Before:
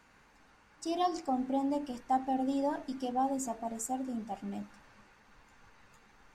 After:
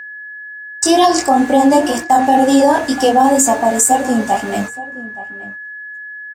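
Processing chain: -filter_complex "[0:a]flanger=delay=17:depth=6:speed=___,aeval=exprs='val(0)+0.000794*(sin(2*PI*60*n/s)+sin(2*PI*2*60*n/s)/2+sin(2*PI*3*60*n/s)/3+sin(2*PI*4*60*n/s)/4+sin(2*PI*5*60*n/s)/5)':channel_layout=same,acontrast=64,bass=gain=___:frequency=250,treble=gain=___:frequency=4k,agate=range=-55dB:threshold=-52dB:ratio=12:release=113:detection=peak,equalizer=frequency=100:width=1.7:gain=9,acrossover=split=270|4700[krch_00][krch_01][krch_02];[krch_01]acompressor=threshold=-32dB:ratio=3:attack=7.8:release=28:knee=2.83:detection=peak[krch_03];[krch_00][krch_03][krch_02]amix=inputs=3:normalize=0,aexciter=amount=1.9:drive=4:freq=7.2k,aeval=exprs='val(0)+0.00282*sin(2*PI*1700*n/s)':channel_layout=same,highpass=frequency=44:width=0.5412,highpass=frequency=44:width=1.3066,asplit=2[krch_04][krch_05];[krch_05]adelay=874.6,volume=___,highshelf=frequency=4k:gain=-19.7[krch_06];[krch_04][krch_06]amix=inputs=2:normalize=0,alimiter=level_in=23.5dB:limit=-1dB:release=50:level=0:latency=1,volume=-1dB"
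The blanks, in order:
2, -14, 3, -16dB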